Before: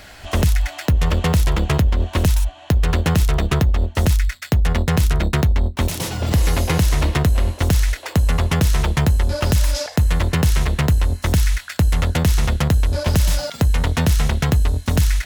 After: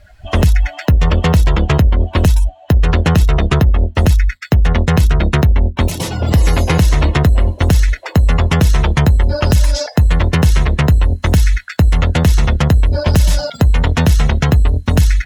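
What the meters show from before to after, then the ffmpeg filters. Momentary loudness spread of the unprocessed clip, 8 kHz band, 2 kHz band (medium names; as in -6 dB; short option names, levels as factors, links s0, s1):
3 LU, +0.5 dB, +4.5 dB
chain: -af "afftdn=nr=21:nf=-33,volume=1.88"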